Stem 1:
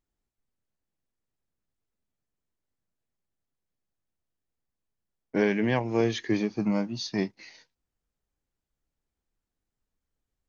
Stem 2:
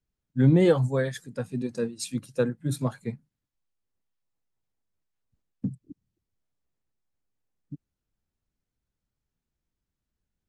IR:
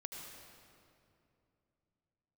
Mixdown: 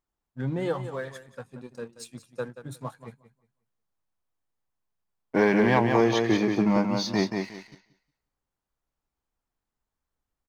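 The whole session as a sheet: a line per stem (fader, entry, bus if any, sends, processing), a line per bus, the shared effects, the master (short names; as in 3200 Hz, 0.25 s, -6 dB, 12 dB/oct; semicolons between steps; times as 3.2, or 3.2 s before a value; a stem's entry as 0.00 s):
-1.5 dB, 0.00 s, no send, echo send -5.5 dB, dry
-12.0 dB, 0.00 s, no send, echo send -11.5 dB, bell 230 Hz -5 dB 1.8 oct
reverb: off
echo: feedback echo 0.18 s, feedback 24%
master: bell 1000 Hz +8.5 dB 1.3 oct; sample leveller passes 1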